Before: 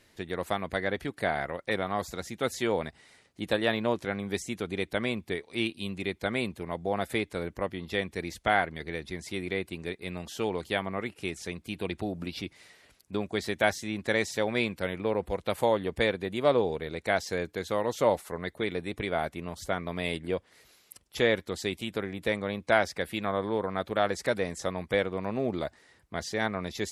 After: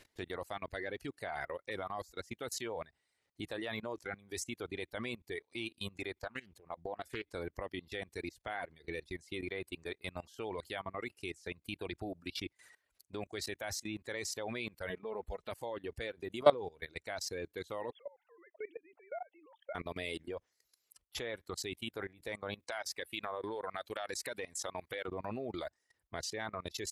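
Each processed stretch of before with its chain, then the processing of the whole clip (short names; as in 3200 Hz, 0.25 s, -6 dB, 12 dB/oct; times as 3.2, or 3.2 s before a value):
6.21–7.33 high shelf 11000 Hz -5.5 dB + compressor 3:1, threshold -36 dBFS + Doppler distortion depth 0.33 ms
14.89–15.51 high shelf 4600 Hz -6.5 dB + comb 4.7 ms, depth 60%
17.9–19.75 sine-wave speech + compressor 4:1, threshold -41 dBFS
22.59–25.08 tilt +2 dB/oct + compressor, threshold -28 dBFS
whole clip: reverb removal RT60 1.7 s; bell 190 Hz -8 dB 0.67 oct; level quantiser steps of 21 dB; gain +2.5 dB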